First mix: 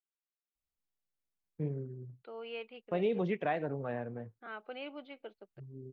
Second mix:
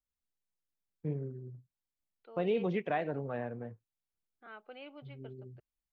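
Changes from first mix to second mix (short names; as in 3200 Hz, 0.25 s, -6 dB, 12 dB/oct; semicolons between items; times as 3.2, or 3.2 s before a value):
first voice: entry -0.55 s; second voice -5.5 dB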